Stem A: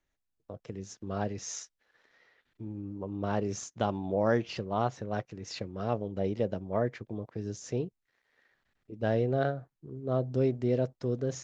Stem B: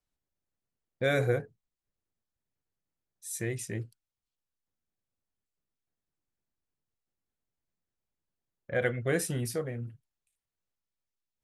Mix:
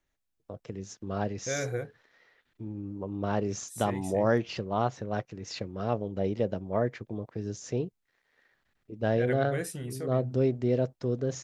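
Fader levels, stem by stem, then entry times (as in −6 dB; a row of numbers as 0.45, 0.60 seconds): +1.5, −5.5 decibels; 0.00, 0.45 seconds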